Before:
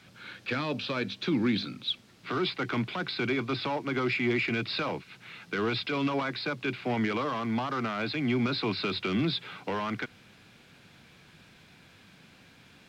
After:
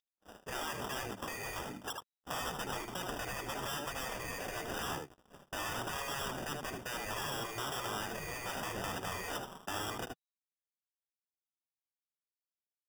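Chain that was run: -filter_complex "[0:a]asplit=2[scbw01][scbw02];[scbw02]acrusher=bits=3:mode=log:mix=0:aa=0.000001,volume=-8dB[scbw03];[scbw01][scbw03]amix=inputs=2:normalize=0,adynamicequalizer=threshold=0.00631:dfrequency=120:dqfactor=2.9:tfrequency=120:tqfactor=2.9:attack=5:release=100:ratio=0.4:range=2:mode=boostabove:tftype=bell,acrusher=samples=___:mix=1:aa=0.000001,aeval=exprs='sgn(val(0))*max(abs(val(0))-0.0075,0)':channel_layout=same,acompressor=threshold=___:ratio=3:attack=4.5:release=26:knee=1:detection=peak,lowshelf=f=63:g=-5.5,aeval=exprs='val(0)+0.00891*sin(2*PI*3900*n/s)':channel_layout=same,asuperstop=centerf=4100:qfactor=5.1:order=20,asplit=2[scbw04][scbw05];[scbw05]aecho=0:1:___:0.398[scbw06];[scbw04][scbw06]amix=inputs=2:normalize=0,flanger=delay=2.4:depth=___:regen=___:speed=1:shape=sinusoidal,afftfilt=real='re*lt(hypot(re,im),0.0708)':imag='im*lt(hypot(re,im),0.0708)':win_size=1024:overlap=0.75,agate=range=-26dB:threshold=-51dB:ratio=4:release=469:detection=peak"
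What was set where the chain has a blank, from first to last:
20, -27dB, 77, 2.9, -51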